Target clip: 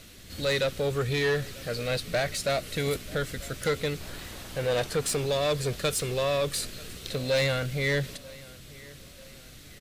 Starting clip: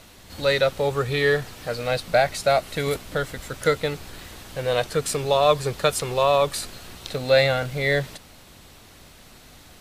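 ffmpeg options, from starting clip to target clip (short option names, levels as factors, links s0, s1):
-af "asetnsamples=n=441:p=0,asendcmd='4.01 equalizer g -2.5;5.26 equalizer g -13.5',equalizer=f=880:t=o:w=0.86:g=-13,asoftclip=type=tanh:threshold=0.0944,aecho=1:1:940|1880|2820:0.0794|0.0365|0.0168"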